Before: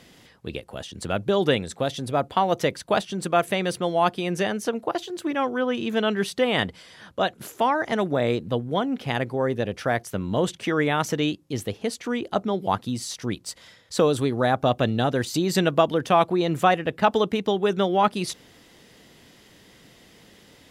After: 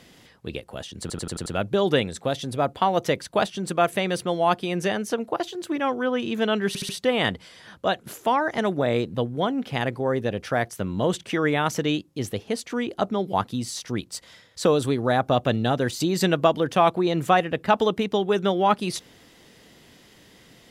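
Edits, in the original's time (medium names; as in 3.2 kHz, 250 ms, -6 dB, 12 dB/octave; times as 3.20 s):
1.01 s: stutter 0.09 s, 6 plays
6.23 s: stutter 0.07 s, 4 plays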